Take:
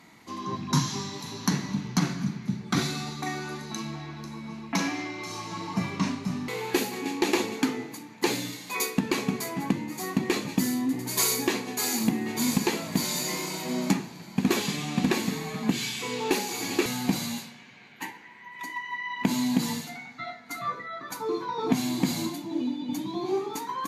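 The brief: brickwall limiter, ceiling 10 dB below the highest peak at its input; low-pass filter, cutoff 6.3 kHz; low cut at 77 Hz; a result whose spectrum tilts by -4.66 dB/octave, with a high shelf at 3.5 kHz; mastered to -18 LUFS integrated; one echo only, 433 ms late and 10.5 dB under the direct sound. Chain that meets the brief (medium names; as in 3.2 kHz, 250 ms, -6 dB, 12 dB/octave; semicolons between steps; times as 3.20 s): high-pass 77 Hz; low-pass 6.3 kHz; treble shelf 3.5 kHz -3.5 dB; peak limiter -20.5 dBFS; delay 433 ms -10.5 dB; trim +14 dB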